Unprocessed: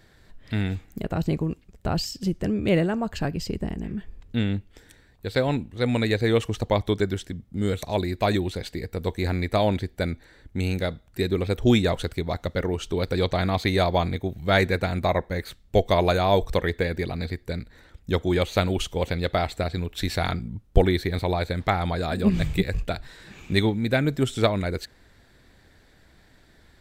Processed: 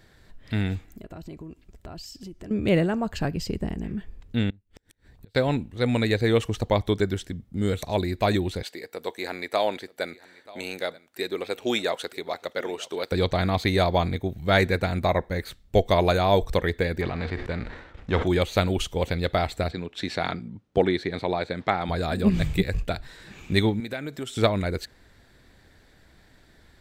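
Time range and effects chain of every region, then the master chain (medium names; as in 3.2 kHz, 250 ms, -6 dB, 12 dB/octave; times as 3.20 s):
0.85–2.51 s: comb 3 ms, depth 34% + compression 3:1, threshold -41 dBFS
4.50–5.35 s: bass shelf 260 Hz +6.5 dB + inverted gate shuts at -31 dBFS, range -31 dB
8.63–13.12 s: high-pass 450 Hz + delay 934 ms -21 dB
17.00–18.26 s: formants flattened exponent 0.6 + low-pass 2.2 kHz + decay stretcher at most 65 dB/s
19.71–21.89 s: high-pass 180 Hz + distance through air 80 m
23.80–24.37 s: high-pass 390 Hz 6 dB/octave + compression 2.5:1, threshold -31 dBFS
whole clip: none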